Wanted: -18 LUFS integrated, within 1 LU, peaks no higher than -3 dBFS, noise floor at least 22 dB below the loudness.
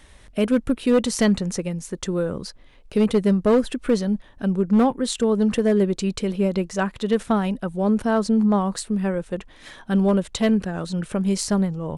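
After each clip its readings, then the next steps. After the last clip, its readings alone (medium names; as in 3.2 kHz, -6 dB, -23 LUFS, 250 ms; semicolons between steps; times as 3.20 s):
clipped samples 0.7%; clipping level -11.5 dBFS; loudness -22.0 LUFS; peak level -11.5 dBFS; loudness target -18.0 LUFS
-> clip repair -11.5 dBFS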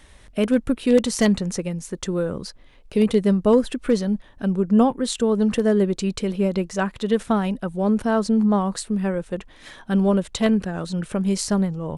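clipped samples 0.0%; loudness -22.0 LUFS; peak level -4.5 dBFS; loudness target -18.0 LUFS
-> trim +4 dB; peak limiter -3 dBFS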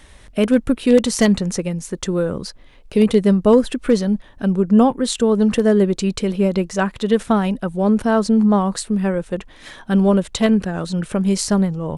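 loudness -18.0 LUFS; peak level -3.0 dBFS; noise floor -45 dBFS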